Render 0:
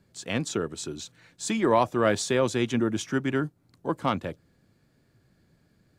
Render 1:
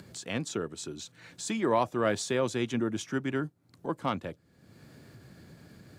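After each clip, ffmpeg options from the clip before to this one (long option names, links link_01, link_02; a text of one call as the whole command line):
ffmpeg -i in.wav -af "highpass=71,acompressor=mode=upward:threshold=-32dB:ratio=2.5,volume=-4.5dB" out.wav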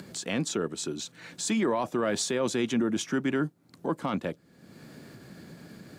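ffmpeg -i in.wav -af "lowshelf=frequency=140:width_type=q:width=1.5:gain=-6.5,alimiter=level_in=0.5dB:limit=-24dB:level=0:latency=1:release=13,volume=-0.5dB,volume=5.5dB" out.wav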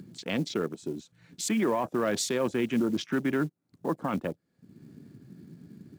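ffmpeg -i in.wav -af "afwtdn=0.0112,acrusher=bits=7:mode=log:mix=0:aa=0.000001" out.wav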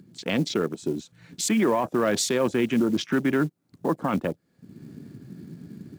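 ffmpeg -i in.wav -af "dynaudnorm=framelen=130:gausssize=3:maxgain=12dB,alimiter=limit=-9.5dB:level=0:latency=1:release=208,volume=-5dB" out.wav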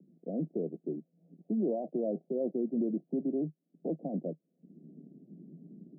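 ffmpeg -i in.wav -af "asuperpass=centerf=330:order=20:qfactor=0.58,volume=-8.5dB" out.wav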